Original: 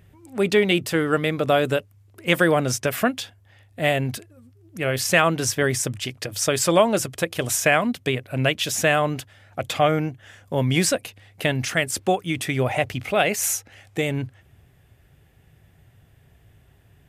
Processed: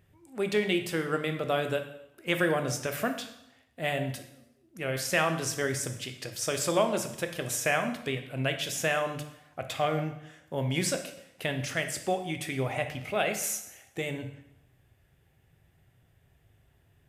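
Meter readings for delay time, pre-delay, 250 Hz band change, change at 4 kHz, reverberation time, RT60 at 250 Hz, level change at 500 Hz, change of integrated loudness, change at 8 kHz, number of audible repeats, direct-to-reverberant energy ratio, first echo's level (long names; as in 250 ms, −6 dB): no echo audible, 5 ms, −8.5 dB, −8.0 dB, 0.85 s, 0.85 s, −8.0 dB, −8.5 dB, −8.0 dB, no echo audible, 6.0 dB, no echo audible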